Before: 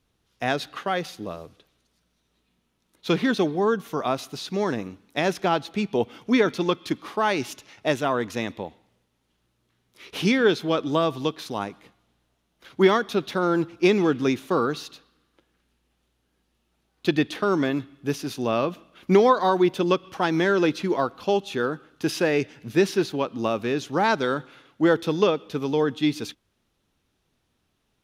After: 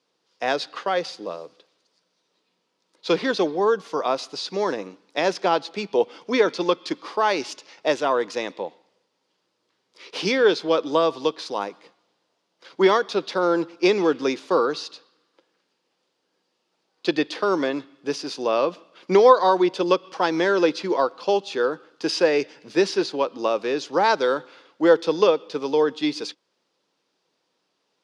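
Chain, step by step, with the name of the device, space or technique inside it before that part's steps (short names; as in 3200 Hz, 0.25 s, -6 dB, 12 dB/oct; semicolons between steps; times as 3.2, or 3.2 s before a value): television speaker (speaker cabinet 200–8300 Hz, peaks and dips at 230 Hz -9 dB, 510 Hz +7 dB, 970 Hz +5 dB, 4800 Hz +9 dB)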